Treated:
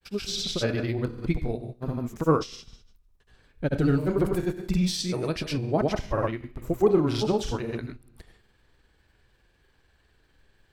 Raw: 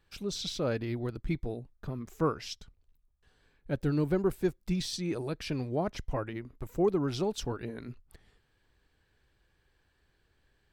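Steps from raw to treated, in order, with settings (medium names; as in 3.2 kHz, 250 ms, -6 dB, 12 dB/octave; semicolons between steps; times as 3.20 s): Schroeder reverb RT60 0.53 s, combs from 25 ms, DRR 8.5 dB; vibrato 13 Hz 28 cents; granulator, pitch spread up and down by 0 st; trim +7.5 dB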